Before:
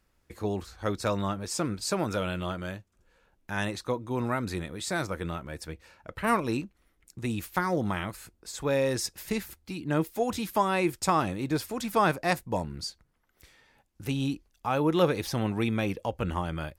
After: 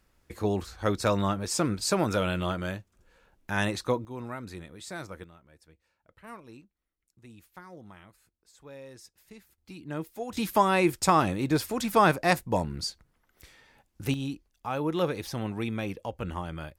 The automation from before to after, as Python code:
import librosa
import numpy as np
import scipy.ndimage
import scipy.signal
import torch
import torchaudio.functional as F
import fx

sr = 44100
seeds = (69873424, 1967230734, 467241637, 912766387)

y = fx.gain(x, sr, db=fx.steps((0.0, 3.0), (4.05, -8.5), (5.24, -19.5), (9.58, -8.0), (10.37, 3.0), (14.14, -4.0)))